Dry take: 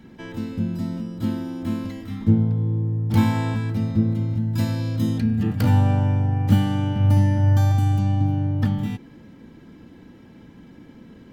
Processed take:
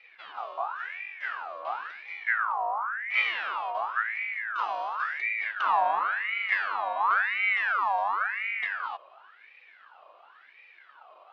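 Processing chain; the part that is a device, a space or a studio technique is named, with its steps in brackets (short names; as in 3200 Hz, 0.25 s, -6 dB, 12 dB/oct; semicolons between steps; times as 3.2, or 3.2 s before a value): voice changer toy (ring modulator with a swept carrier 1500 Hz, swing 45%, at 0.94 Hz; speaker cabinet 550–4000 Hz, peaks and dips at 710 Hz +3 dB, 1900 Hz -6 dB, 2800 Hz +6 dB); gain -5 dB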